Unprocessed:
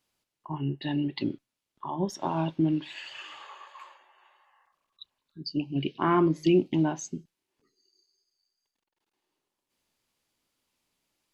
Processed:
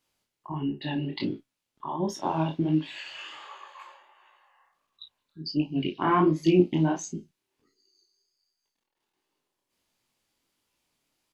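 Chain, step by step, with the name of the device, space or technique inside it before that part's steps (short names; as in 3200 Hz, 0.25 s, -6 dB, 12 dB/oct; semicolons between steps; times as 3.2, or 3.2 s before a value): double-tracked vocal (doubler 33 ms -8.5 dB; chorus 1.4 Hz, delay 18 ms, depth 7.9 ms); gain +4 dB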